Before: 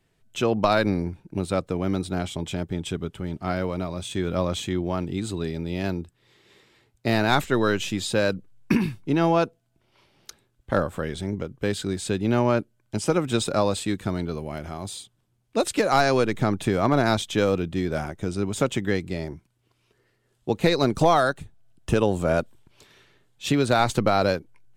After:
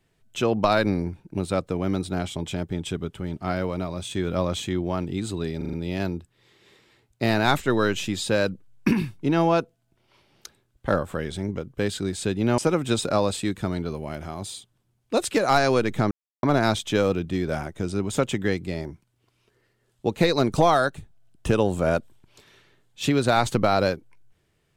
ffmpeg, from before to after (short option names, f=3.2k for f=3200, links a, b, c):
-filter_complex "[0:a]asplit=8[a][b][c][d][e][f][g][h];[a]atrim=end=5.612[i];[b]atrim=start=5.568:end=5.612[j];[c]atrim=start=5.568:end=5.612[k];[d]atrim=start=5.568:end=5.612[l];[e]atrim=start=5.568:end=12.422[m];[f]atrim=start=13.008:end=16.54,asetpts=PTS-STARTPTS,afade=t=out:st=3.528:d=0.004:c=hsin[n];[g]atrim=start=16.54:end=16.86,asetpts=PTS-STARTPTS,volume=0[o];[h]atrim=start=16.86,asetpts=PTS-STARTPTS,afade=t=in:d=0.004:c=hsin[p];[i][j]acrossfade=d=0.004:c1=hsin:c2=hsin[q];[q][k]acrossfade=d=0.004:c1=hsin:c2=hsin[r];[r][l]acrossfade=d=0.004:c1=hsin:c2=hsin[s];[s][m]acrossfade=d=0.004:c1=hsin:c2=hsin[t];[n][o][p]concat=n=3:v=0:a=1[u];[t][u]acrossfade=d=0.004:c1=hsin:c2=hsin"